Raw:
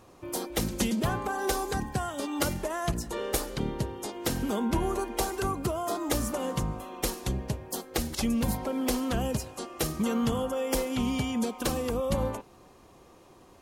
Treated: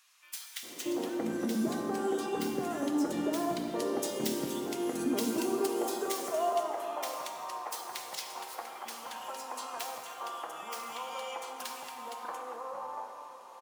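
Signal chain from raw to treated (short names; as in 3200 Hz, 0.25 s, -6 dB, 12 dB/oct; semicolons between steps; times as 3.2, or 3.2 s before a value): tracing distortion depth 0.087 ms; 3.68–6.22 high shelf 2300 Hz +9 dB; compressor, threshold -34 dBFS, peak gain reduction 13.5 dB; high-pass sweep 260 Hz -> 930 Hz, 4.4–6.43; bands offset in time highs, lows 0.63 s, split 1600 Hz; plate-style reverb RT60 3 s, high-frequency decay 0.6×, DRR 2 dB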